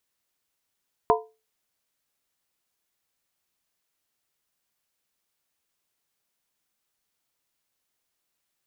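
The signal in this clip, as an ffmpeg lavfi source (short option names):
-f lavfi -i "aevalsrc='0.15*pow(10,-3*t/0.29)*sin(2*PI*440*t)+0.141*pow(10,-3*t/0.23)*sin(2*PI*701.4*t)+0.133*pow(10,-3*t/0.198)*sin(2*PI*939.8*t)+0.126*pow(10,-3*t/0.191)*sin(2*PI*1010.2*t)':d=0.63:s=44100"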